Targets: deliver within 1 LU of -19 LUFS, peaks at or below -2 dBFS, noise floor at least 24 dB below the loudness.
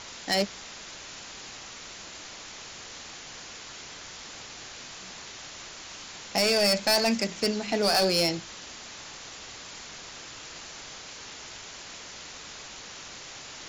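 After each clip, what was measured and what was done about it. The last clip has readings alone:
clipped samples 0.5%; clipping level -18.5 dBFS; noise floor -44 dBFS; noise floor target -55 dBFS; loudness -31.0 LUFS; peak level -18.5 dBFS; loudness target -19.0 LUFS
-> clip repair -18.5 dBFS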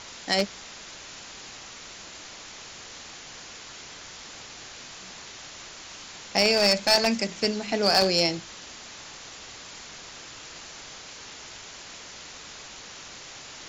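clipped samples 0.0%; noise floor -44 dBFS; noise floor target -47 dBFS
-> noise reduction 6 dB, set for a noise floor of -44 dBFS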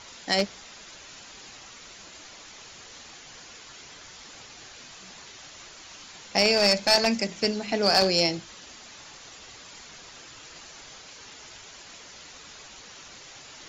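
noise floor -47 dBFS; loudness -23.0 LUFS; peak level -9.0 dBFS; loudness target -19.0 LUFS
-> trim +4 dB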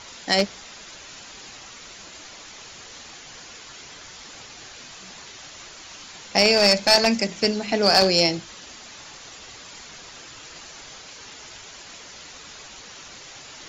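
loudness -19.0 LUFS; peak level -5.0 dBFS; noise floor -43 dBFS

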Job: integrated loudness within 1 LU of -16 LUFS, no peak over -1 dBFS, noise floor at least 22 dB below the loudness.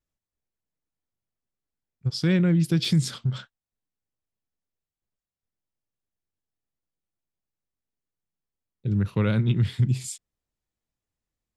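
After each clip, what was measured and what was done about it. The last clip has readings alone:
dropouts 1; longest dropout 2.0 ms; loudness -24.5 LUFS; peak level -12.0 dBFS; loudness target -16.0 LUFS
-> interpolate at 2.85 s, 2 ms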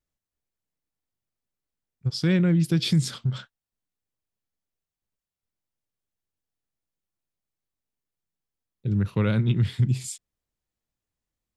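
dropouts 0; loudness -24.5 LUFS; peak level -12.0 dBFS; loudness target -16.0 LUFS
-> trim +8.5 dB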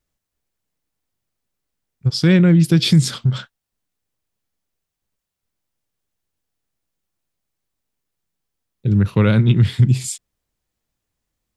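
loudness -16.0 LUFS; peak level -3.5 dBFS; noise floor -82 dBFS

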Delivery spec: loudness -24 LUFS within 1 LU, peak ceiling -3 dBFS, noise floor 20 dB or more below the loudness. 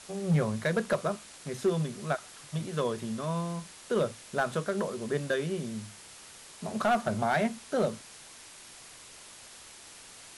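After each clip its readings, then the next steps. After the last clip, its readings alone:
clipped samples 0.5%; clipping level -19.5 dBFS; noise floor -50 dBFS; noise floor target -52 dBFS; loudness -31.5 LUFS; peak level -19.5 dBFS; loudness target -24.0 LUFS
-> clip repair -19.5 dBFS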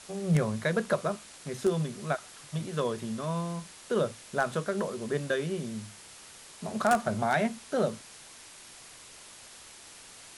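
clipped samples 0.0%; noise floor -50 dBFS; noise floor target -51 dBFS
-> noise print and reduce 6 dB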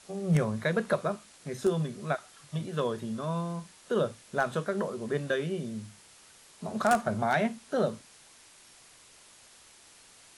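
noise floor -56 dBFS; loudness -31.0 LUFS; peak level -10.5 dBFS; loudness target -24.0 LUFS
-> trim +7 dB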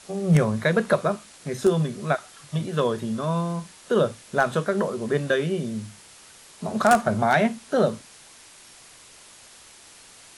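loudness -24.0 LUFS; peak level -3.5 dBFS; noise floor -49 dBFS

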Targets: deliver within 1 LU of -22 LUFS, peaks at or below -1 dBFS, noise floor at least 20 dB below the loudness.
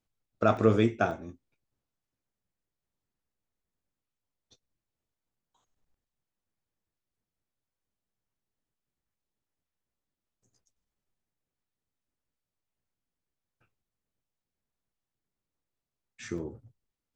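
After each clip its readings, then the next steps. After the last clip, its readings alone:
dropouts 3; longest dropout 2.3 ms; loudness -28.0 LUFS; peak level -10.0 dBFS; loudness target -22.0 LUFS
-> interpolate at 0.57/1.11/16.38 s, 2.3 ms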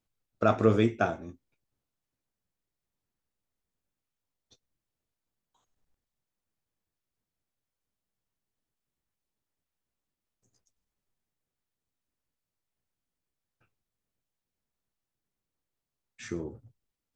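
dropouts 0; loudness -28.0 LUFS; peak level -10.0 dBFS; loudness target -22.0 LUFS
-> trim +6 dB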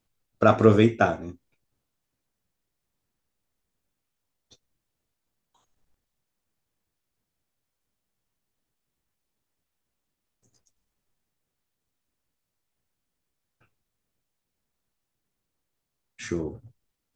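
loudness -22.0 LUFS; peak level -4.0 dBFS; noise floor -83 dBFS

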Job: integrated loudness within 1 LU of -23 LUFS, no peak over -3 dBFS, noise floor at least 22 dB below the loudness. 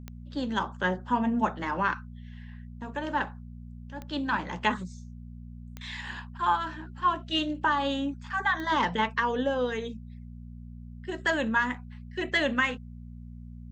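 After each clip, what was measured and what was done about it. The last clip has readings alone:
clicks found 4; hum 60 Hz; highest harmonic 240 Hz; hum level -41 dBFS; loudness -29.0 LUFS; peak level -11.0 dBFS; loudness target -23.0 LUFS
-> de-click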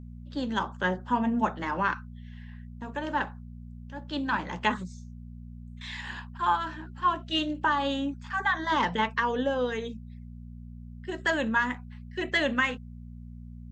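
clicks found 0; hum 60 Hz; highest harmonic 240 Hz; hum level -41 dBFS
-> de-hum 60 Hz, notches 4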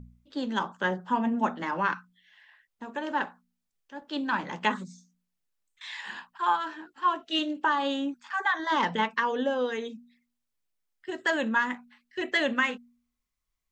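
hum not found; loudness -29.0 LUFS; peak level -11.5 dBFS; loudness target -23.0 LUFS
-> trim +6 dB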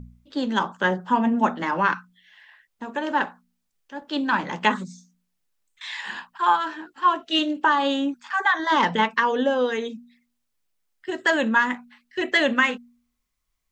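loudness -23.0 LUFS; peak level -5.5 dBFS; noise floor -76 dBFS

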